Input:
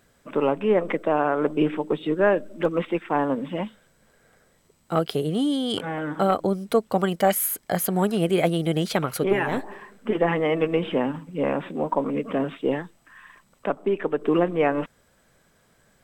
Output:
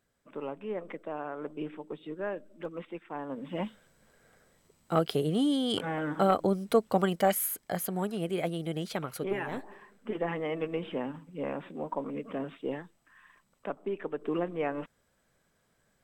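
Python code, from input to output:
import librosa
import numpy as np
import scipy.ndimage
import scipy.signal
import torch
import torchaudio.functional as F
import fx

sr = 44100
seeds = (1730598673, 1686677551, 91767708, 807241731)

y = fx.gain(x, sr, db=fx.line((3.24, -15.5), (3.65, -3.5), (6.96, -3.5), (8.11, -10.5)))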